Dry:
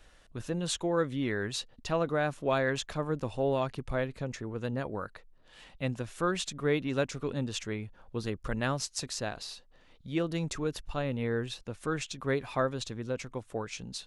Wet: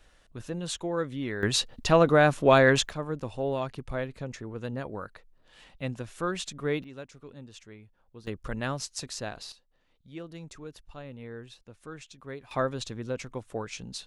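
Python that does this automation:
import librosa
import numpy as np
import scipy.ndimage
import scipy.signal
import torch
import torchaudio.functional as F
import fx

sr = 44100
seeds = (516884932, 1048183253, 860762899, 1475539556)

y = fx.gain(x, sr, db=fx.steps((0.0, -1.5), (1.43, 9.5), (2.89, -1.0), (6.84, -13.0), (8.27, -1.0), (9.52, -10.5), (12.51, 1.0)))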